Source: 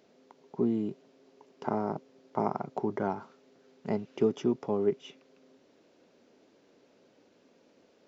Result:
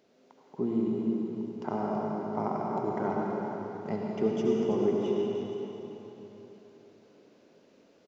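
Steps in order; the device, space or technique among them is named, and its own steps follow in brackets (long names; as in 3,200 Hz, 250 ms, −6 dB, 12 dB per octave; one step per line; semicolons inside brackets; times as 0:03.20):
cave (single-tap delay 329 ms −9 dB; convolution reverb RT60 3.8 s, pre-delay 65 ms, DRR −2.5 dB)
level −3 dB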